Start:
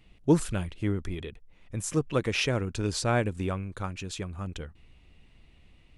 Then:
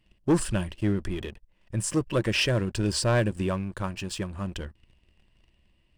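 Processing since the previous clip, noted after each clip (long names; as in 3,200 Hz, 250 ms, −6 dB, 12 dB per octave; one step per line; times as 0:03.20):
EQ curve with evenly spaced ripples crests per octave 1.3, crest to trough 7 dB
leveller curve on the samples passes 2
level −4.5 dB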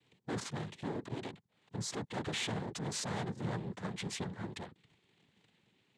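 tube saturation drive 35 dB, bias 0.3
cochlear-implant simulation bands 6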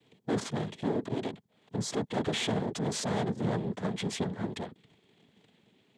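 hollow resonant body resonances 240/430/630/3,300 Hz, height 7 dB, ringing for 20 ms
level +3 dB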